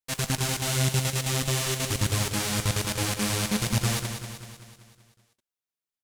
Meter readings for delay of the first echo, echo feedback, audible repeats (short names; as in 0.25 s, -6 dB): 0.191 s, 55%, 6